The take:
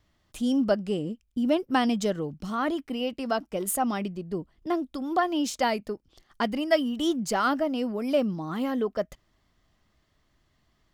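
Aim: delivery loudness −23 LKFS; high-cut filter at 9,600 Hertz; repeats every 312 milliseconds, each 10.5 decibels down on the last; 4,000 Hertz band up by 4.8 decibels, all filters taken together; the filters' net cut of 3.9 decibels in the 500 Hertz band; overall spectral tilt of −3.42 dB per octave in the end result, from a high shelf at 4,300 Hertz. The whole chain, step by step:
low-pass filter 9,600 Hz
parametric band 500 Hz −5.5 dB
parametric band 4,000 Hz +3.5 dB
high-shelf EQ 4,300 Hz +6.5 dB
repeating echo 312 ms, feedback 30%, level −10.5 dB
level +5.5 dB

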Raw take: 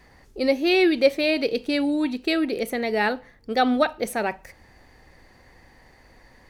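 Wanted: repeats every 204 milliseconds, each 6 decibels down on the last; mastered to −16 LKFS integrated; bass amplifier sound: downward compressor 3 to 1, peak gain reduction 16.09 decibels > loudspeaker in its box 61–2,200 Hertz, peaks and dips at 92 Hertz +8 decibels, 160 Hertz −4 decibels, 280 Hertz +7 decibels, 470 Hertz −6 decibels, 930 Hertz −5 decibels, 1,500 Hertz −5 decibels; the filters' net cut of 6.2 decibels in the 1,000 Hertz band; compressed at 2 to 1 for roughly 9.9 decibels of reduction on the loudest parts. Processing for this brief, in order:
parametric band 1,000 Hz −6 dB
downward compressor 2 to 1, threshold −32 dBFS
repeating echo 204 ms, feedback 50%, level −6 dB
downward compressor 3 to 1, threshold −44 dBFS
loudspeaker in its box 61–2,200 Hz, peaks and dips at 92 Hz +8 dB, 160 Hz −4 dB, 280 Hz +7 dB, 470 Hz −6 dB, 930 Hz −5 dB, 1,500 Hz −5 dB
level +26 dB

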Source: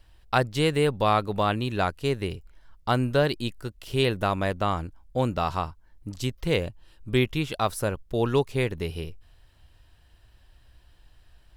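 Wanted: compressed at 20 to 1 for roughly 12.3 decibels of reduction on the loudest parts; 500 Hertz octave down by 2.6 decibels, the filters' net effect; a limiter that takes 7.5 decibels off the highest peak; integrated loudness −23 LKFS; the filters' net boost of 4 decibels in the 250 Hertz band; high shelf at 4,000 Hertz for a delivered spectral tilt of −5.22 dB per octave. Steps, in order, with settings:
parametric band 250 Hz +6.5 dB
parametric band 500 Hz −5.5 dB
high-shelf EQ 4,000 Hz +6 dB
downward compressor 20 to 1, threshold −28 dBFS
level +14.5 dB
brickwall limiter −9 dBFS

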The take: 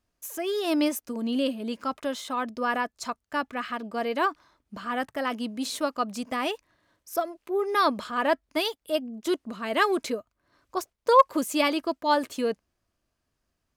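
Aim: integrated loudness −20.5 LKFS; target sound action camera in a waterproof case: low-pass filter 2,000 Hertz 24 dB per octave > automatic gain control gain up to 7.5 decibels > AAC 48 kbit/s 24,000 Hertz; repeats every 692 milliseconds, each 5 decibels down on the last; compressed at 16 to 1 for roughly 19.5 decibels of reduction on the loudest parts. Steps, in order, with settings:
downward compressor 16 to 1, threshold −31 dBFS
low-pass filter 2,000 Hz 24 dB per octave
repeating echo 692 ms, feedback 56%, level −5 dB
automatic gain control gain up to 7.5 dB
level +13 dB
AAC 48 kbit/s 24,000 Hz

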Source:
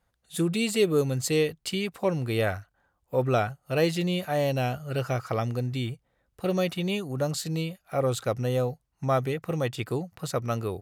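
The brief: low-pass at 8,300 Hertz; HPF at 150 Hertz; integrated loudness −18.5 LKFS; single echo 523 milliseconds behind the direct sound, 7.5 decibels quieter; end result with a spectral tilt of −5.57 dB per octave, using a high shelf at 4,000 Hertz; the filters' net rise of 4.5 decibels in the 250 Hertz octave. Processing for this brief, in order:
high-pass filter 150 Hz
low-pass filter 8,300 Hz
parametric band 250 Hz +7.5 dB
high-shelf EQ 4,000 Hz +4 dB
single-tap delay 523 ms −7.5 dB
level +7.5 dB

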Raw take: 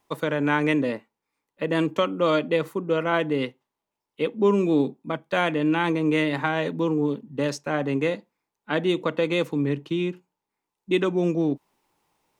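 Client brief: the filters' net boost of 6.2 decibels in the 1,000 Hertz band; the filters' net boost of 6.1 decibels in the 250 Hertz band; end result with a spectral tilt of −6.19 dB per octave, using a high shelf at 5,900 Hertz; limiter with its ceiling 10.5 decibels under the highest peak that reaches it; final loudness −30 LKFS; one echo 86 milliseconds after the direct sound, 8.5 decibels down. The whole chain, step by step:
parametric band 250 Hz +8 dB
parametric band 1,000 Hz +7.5 dB
high-shelf EQ 5,900 Hz −6.5 dB
brickwall limiter −14.5 dBFS
single-tap delay 86 ms −8.5 dB
level −6.5 dB

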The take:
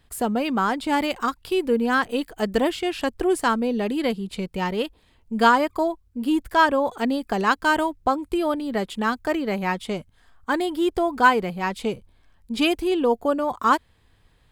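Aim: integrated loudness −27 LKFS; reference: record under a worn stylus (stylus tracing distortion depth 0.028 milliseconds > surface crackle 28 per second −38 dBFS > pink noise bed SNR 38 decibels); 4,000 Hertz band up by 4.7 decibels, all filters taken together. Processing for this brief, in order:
parametric band 4,000 Hz +6.5 dB
stylus tracing distortion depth 0.028 ms
surface crackle 28 per second −38 dBFS
pink noise bed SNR 38 dB
level −4 dB

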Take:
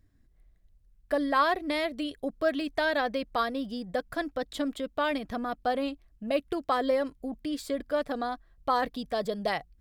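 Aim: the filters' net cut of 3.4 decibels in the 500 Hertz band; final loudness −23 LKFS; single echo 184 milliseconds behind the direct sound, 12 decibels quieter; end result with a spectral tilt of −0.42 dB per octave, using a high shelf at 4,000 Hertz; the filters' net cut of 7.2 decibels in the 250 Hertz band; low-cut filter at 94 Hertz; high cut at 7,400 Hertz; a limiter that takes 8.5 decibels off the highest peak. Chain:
high-pass filter 94 Hz
low-pass filter 7,400 Hz
parametric band 250 Hz −7.5 dB
parametric band 500 Hz −3 dB
high-shelf EQ 4,000 Hz +6.5 dB
brickwall limiter −21 dBFS
single-tap delay 184 ms −12 dB
level +11 dB

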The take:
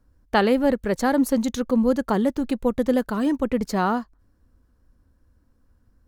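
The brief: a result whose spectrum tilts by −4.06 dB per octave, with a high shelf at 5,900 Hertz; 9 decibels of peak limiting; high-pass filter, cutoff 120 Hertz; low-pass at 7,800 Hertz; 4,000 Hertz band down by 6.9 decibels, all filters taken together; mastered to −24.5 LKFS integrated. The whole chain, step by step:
high-pass filter 120 Hz
low-pass filter 7,800 Hz
parametric band 4,000 Hz −6.5 dB
high-shelf EQ 5,900 Hz −8.5 dB
level +1.5 dB
brickwall limiter −15 dBFS

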